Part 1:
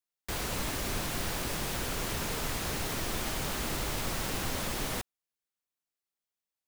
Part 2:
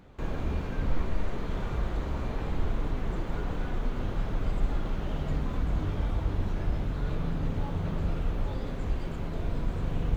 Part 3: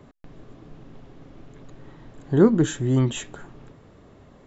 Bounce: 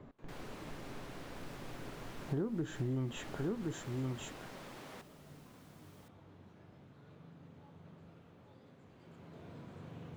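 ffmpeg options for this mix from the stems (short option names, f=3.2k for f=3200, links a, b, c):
-filter_complex "[0:a]highpass=230,volume=-12.5dB,asplit=2[a][b];[b]volume=-18dB[c];[1:a]highpass=f=110:w=0.5412,highpass=f=110:w=1.3066,volume=-14dB,afade=t=in:st=8.89:d=0.62:silence=0.398107[d];[2:a]volume=-4.5dB,asplit=2[e][f];[f]volume=-11dB[g];[a][e]amix=inputs=2:normalize=0,lowpass=f=2k:p=1,acompressor=threshold=-27dB:ratio=2.5,volume=0dB[h];[c][g]amix=inputs=2:normalize=0,aecho=0:1:1068:1[i];[d][h][i]amix=inputs=3:normalize=0,acompressor=threshold=-34dB:ratio=4"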